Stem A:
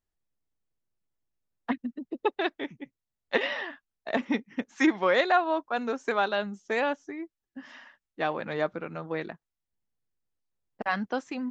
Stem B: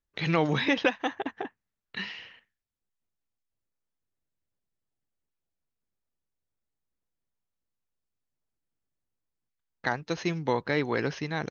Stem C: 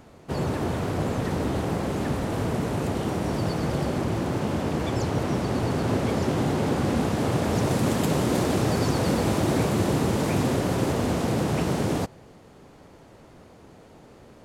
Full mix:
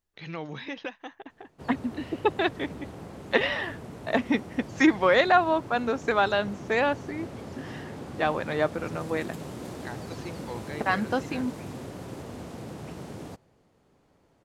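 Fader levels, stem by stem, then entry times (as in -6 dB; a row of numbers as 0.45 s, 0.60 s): +3.0 dB, -11.5 dB, -15.0 dB; 0.00 s, 0.00 s, 1.30 s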